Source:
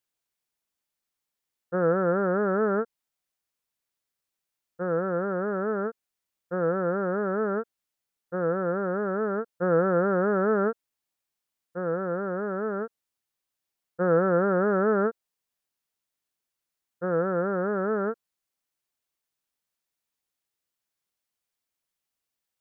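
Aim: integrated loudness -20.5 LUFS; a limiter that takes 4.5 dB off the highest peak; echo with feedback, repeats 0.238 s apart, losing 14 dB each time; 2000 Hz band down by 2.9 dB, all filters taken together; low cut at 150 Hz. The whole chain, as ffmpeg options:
-af "highpass=150,equalizer=f=2k:t=o:g=-4.5,alimiter=limit=-17dB:level=0:latency=1,aecho=1:1:238|476:0.2|0.0399,volume=7.5dB"

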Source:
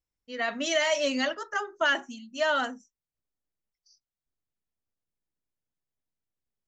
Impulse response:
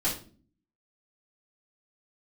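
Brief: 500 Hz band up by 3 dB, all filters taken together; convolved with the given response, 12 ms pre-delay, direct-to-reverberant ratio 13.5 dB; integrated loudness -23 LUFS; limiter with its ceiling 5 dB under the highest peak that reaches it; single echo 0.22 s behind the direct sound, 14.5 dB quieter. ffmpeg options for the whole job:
-filter_complex "[0:a]equalizer=f=500:t=o:g=4,alimiter=limit=-17.5dB:level=0:latency=1,aecho=1:1:220:0.188,asplit=2[a][b];[1:a]atrim=start_sample=2205,adelay=12[c];[b][c]afir=irnorm=-1:irlink=0,volume=-22dB[d];[a][d]amix=inputs=2:normalize=0,volume=5dB"

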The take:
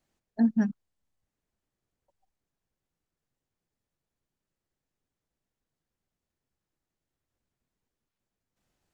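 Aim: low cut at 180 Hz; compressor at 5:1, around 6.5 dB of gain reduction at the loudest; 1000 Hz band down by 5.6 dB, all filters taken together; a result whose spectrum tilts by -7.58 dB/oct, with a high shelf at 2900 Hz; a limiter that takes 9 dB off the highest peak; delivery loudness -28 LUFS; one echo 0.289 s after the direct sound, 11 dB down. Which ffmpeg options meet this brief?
-af "highpass=180,equalizer=f=1k:t=o:g=-8,highshelf=f=2.9k:g=-6.5,acompressor=threshold=-28dB:ratio=5,alimiter=level_in=7dB:limit=-24dB:level=0:latency=1,volume=-7dB,aecho=1:1:289:0.282,volume=14dB"

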